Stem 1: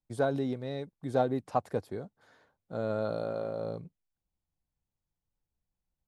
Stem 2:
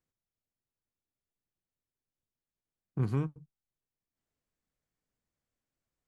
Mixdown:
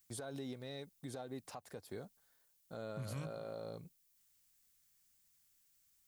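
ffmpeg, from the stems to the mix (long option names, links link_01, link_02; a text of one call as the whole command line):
ffmpeg -i stem1.wav -i stem2.wav -filter_complex "[0:a]agate=range=-15dB:threshold=-57dB:ratio=16:detection=peak,highshelf=frequency=5300:gain=-7,acompressor=threshold=-32dB:ratio=6,volume=-7.5dB,asplit=2[link_01][link_02];[1:a]equalizer=frequency=470:width_type=o:width=1.3:gain=-12,volume=1.5dB[link_03];[link_02]apad=whole_len=268043[link_04];[link_03][link_04]sidechaincompress=threshold=-44dB:ratio=8:attack=16:release=167[link_05];[link_01][link_05]amix=inputs=2:normalize=0,crystalizer=i=7:c=0,alimiter=level_in=11dB:limit=-24dB:level=0:latency=1:release=142,volume=-11dB" out.wav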